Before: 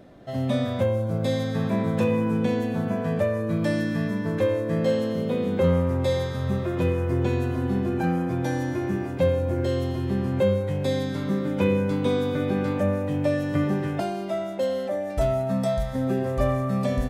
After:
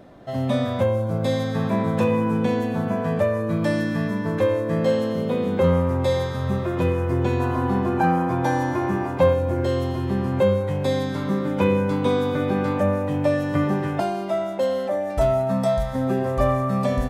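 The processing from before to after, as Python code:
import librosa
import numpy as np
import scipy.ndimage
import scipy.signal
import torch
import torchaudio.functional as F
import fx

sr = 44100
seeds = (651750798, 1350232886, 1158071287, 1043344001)

y = fx.peak_eq(x, sr, hz=980.0, db=fx.steps((0.0, 5.0), (7.4, 13.5), (9.33, 6.5)), octaves=1.0)
y = y * librosa.db_to_amplitude(1.5)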